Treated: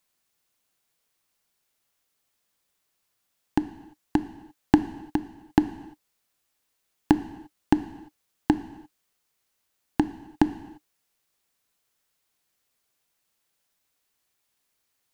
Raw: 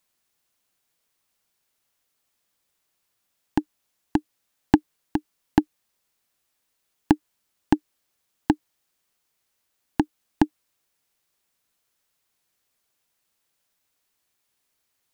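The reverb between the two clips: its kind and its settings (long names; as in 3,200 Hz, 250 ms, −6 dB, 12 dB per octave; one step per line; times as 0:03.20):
reverb whose tail is shaped and stops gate 370 ms falling, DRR 11 dB
level −1 dB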